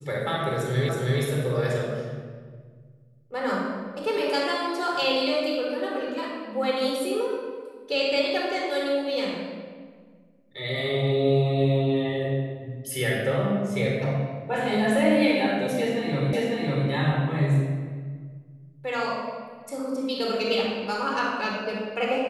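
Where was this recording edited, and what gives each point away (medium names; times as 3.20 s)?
0.89 s: repeat of the last 0.32 s
16.33 s: repeat of the last 0.55 s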